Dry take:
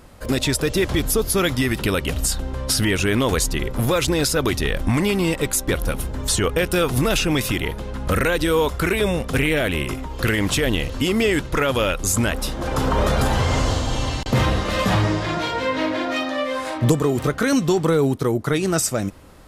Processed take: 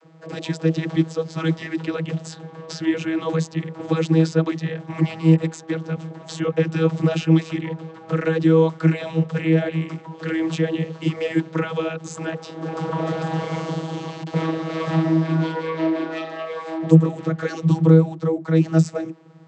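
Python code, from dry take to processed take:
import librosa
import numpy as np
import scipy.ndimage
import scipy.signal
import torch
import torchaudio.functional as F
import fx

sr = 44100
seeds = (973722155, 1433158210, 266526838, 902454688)

y = fx.notch_comb(x, sr, f0_hz=290.0, at=(4.54, 4.99))
y = fx.vocoder(y, sr, bands=32, carrier='saw', carrier_hz=161.0)
y = F.gain(torch.from_numpy(y), 1.0).numpy()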